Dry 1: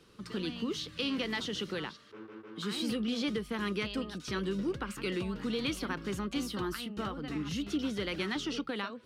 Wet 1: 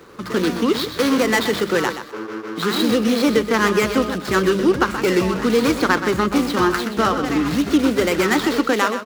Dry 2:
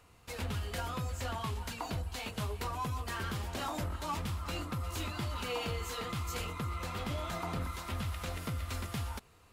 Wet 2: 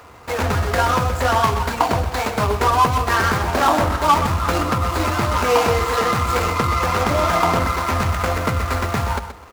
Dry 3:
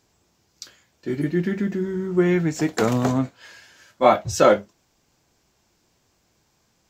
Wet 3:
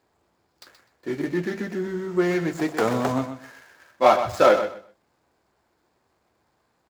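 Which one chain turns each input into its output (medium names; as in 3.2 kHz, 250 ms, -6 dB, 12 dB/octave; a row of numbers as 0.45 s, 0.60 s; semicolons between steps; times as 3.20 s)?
median filter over 15 samples; in parallel at -5 dB: saturation -17 dBFS; on the sum: high-pass 66 Hz; peaking EQ 140 Hz -10 dB 2.7 oct; hum notches 50/100/150/200 Hz; feedback delay 126 ms, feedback 20%, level -10 dB; peak normalisation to -2 dBFS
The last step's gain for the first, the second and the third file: +19.0 dB, +20.5 dB, 0.0 dB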